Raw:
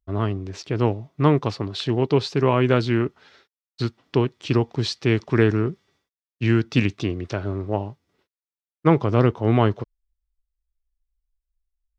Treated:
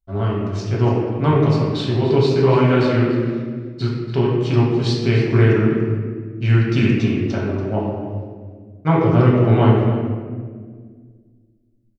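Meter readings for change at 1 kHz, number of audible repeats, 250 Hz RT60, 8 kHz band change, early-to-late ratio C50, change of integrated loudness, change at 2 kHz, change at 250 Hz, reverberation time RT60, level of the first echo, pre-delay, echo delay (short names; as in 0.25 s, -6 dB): +3.0 dB, 1, 2.7 s, n/a, 0.0 dB, +4.5 dB, +3.0 dB, +4.5 dB, 1.8 s, -13.0 dB, 4 ms, 0.286 s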